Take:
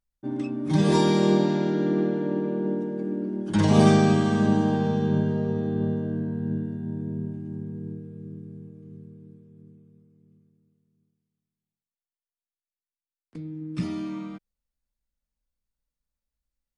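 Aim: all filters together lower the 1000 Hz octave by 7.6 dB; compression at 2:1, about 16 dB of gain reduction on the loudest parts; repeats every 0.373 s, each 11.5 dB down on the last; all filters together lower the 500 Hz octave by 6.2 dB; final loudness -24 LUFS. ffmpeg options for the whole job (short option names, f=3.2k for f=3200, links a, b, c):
-af "equalizer=f=500:t=o:g=-7.5,equalizer=f=1k:t=o:g=-7,acompressor=threshold=-45dB:ratio=2,aecho=1:1:373|746|1119:0.266|0.0718|0.0194,volume=14.5dB"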